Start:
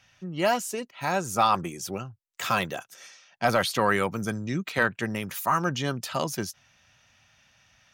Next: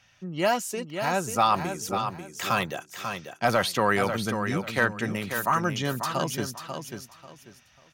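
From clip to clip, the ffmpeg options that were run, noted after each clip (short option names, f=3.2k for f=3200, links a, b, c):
-af "aecho=1:1:541|1082|1623:0.422|0.105|0.0264"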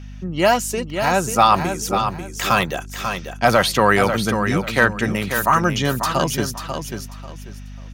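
-af "aeval=exprs='val(0)+0.00794*(sin(2*PI*50*n/s)+sin(2*PI*2*50*n/s)/2+sin(2*PI*3*50*n/s)/3+sin(2*PI*4*50*n/s)/4+sin(2*PI*5*50*n/s)/5)':c=same,volume=8dB"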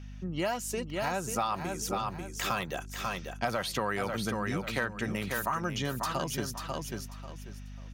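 -af "acompressor=threshold=-20dB:ratio=4,volume=-8.5dB"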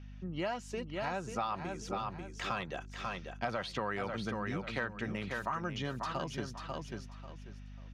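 -af "lowpass=4.3k,volume=-4.5dB"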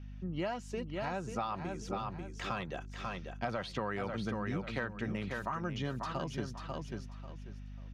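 -af "lowshelf=f=490:g=5,volume=-2.5dB"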